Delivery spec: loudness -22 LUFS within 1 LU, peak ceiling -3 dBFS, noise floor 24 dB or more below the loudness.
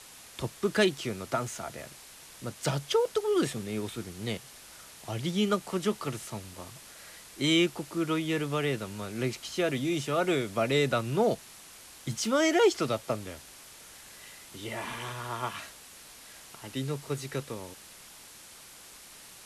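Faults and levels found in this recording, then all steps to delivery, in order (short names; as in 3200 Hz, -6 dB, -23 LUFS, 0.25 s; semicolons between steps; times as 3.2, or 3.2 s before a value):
noise floor -50 dBFS; noise floor target -55 dBFS; loudness -30.5 LUFS; peak -12.0 dBFS; loudness target -22.0 LUFS
-> denoiser 6 dB, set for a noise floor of -50 dBFS; gain +8.5 dB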